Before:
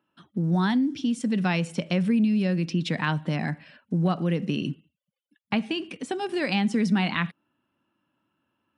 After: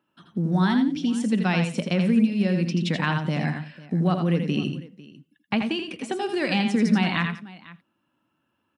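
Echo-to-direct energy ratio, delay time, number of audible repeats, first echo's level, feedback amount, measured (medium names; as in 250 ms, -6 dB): -5.5 dB, 82 ms, 3, -6.0 dB, no regular repeats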